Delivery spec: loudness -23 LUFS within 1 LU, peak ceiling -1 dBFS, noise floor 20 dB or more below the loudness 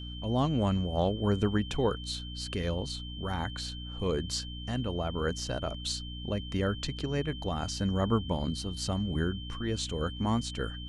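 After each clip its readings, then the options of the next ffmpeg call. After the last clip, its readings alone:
hum 60 Hz; harmonics up to 300 Hz; hum level -39 dBFS; steady tone 3100 Hz; tone level -44 dBFS; loudness -32.0 LUFS; peak -14.5 dBFS; loudness target -23.0 LUFS
-> -af "bandreject=f=60:t=h:w=6,bandreject=f=120:t=h:w=6,bandreject=f=180:t=h:w=6,bandreject=f=240:t=h:w=6,bandreject=f=300:t=h:w=6"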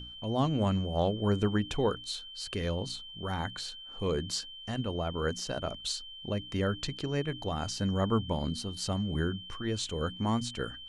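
hum none; steady tone 3100 Hz; tone level -44 dBFS
-> -af "bandreject=f=3.1k:w=30"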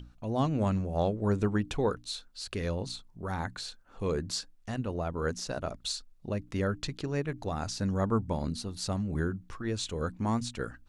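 steady tone none; loudness -33.0 LUFS; peak -16.5 dBFS; loudness target -23.0 LUFS
-> -af "volume=10dB"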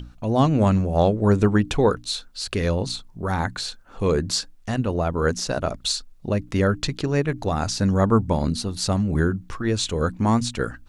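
loudness -23.0 LUFS; peak -6.5 dBFS; noise floor -48 dBFS

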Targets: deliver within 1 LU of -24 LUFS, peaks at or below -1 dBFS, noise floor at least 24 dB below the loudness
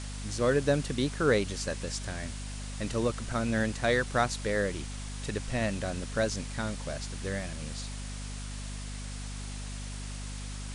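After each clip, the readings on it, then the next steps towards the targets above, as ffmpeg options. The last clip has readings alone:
hum 50 Hz; harmonics up to 250 Hz; hum level -36 dBFS; noise floor -39 dBFS; noise floor target -57 dBFS; loudness -32.5 LUFS; peak -11.5 dBFS; loudness target -24.0 LUFS
-> -af "bandreject=f=50:t=h:w=6,bandreject=f=100:t=h:w=6,bandreject=f=150:t=h:w=6,bandreject=f=200:t=h:w=6,bandreject=f=250:t=h:w=6"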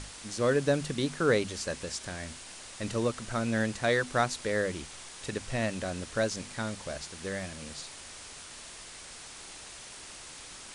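hum none; noise floor -47 dBFS; noise floor target -56 dBFS
-> -af "afftdn=nr=9:nf=-47"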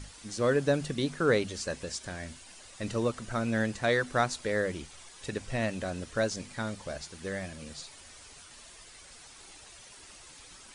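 noise floor -52 dBFS; noise floor target -56 dBFS
-> -af "afftdn=nr=6:nf=-52"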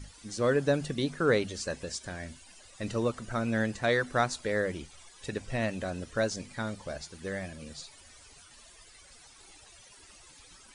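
noise floor -55 dBFS; noise floor target -56 dBFS
-> -af "afftdn=nr=6:nf=-55"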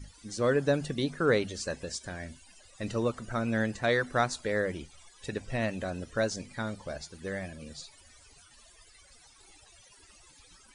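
noise floor -58 dBFS; loudness -31.5 LUFS; peak -12.0 dBFS; loudness target -24.0 LUFS
-> -af "volume=7.5dB"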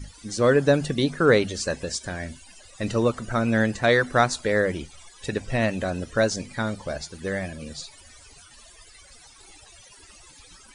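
loudness -24.0 LUFS; peak -4.5 dBFS; noise floor -51 dBFS

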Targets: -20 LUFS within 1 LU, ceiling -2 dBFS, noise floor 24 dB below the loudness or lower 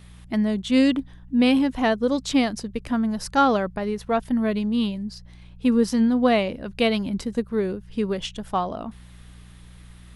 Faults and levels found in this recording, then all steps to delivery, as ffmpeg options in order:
hum 60 Hz; harmonics up to 180 Hz; hum level -43 dBFS; loudness -23.0 LUFS; peak -7.0 dBFS; loudness target -20.0 LUFS
-> -af "bandreject=f=60:t=h:w=4,bandreject=f=120:t=h:w=4,bandreject=f=180:t=h:w=4"
-af "volume=3dB"

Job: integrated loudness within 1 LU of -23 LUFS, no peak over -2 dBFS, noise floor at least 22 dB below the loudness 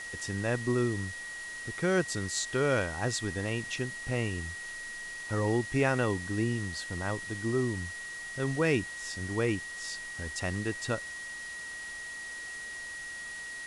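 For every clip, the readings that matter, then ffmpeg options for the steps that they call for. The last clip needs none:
steady tone 1900 Hz; tone level -39 dBFS; noise floor -41 dBFS; noise floor target -55 dBFS; loudness -32.5 LUFS; peak -14.0 dBFS; loudness target -23.0 LUFS
-> -af "bandreject=f=1.9k:w=30"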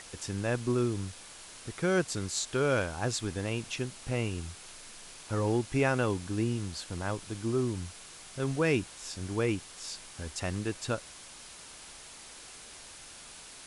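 steady tone none; noise floor -49 dBFS; noise floor target -55 dBFS
-> -af "afftdn=nr=6:nf=-49"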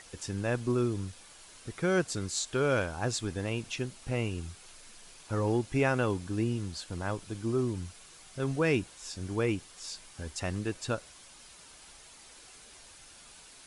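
noise floor -54 dBFS; noise floor target -55 dBFS
-> -af "afftdn=nr=6:nf=-54"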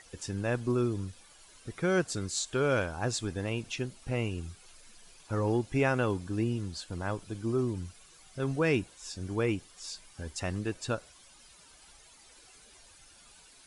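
noise floor -57 dBFS; loudness -32.5 LUFS; peak -14.0 dBFS; loudness target -23.0 LUFS
-> -af "volume=9.5dB"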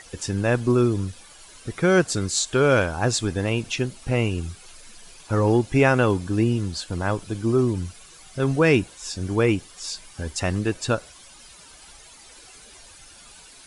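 loudness -23.0 LUFS; peak -4.5 dBFS; noise floor -48 dBFS

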